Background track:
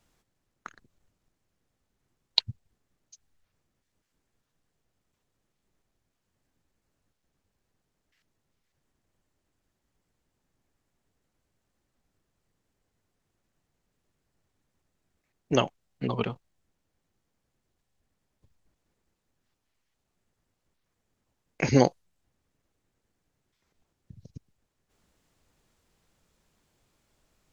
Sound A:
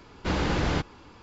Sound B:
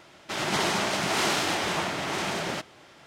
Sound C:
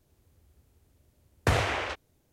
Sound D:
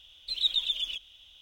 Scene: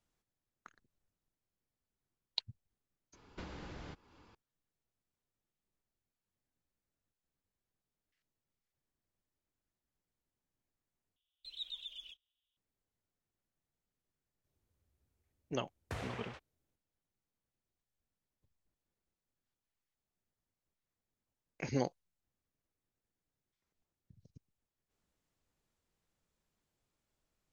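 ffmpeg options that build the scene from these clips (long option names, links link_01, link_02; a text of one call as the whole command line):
ffmpeg -i bed.wav -i cue0.wav -i cue1.wav -i cue2.wav -i cue3.wav -filter_complex "[0:a]volume=-14dB[link_01];[1:a]acompressor=threshold=-35dB:ratio=5:attack=71:release=313:knee=1:detection=rms[link_02];[4:a]agate=range=-18dB:threshold=-45dB:ratio=16:release=100:detection=peak[link_03];[link_01]asplit=2[link_04][link_05];[link_04]atrim=end=11.164[link_06];[link_03]atrim=end=1.41,asetpts=PTS-STARTPTS,volume=-17.5dB[link_07];[link_05]atrim=start=12.566[link_08];[link_02]atrim=end=1.22,asetpts=PTS-STARTPTS,volume=-12.5dB,afade=type=in:duration=0.004:curve=hsin,afade=type=out:start_time=1.216:duration=0.004:curve=hsin,adelay=138033S[link_09];[3:a]atrim=end=2.32,asetpts=PTS-STARTPTS,volume=-18dB,afade=type=in:duration=0.004:curve=hsin,afade=type=out:start_time=2.316:duration=0.004:curve=hsin,adelay=636804S[link_10];[link_06][link_07]acrossfade=duration=0.004:curve1=hsin:curve2=hsin[link_11];[link_11][link_08]acrossfade=duration=0.004:curve1=hsin:curve2=hsin[link_12];[link_12][link_09][link_10]amix=inputs=3:normalize=0" out.wav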